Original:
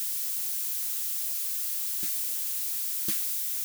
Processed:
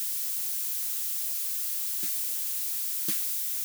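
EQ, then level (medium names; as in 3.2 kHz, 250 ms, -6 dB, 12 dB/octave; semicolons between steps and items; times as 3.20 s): high-pass 120 Hz 24 dB/octave; 0.0 dB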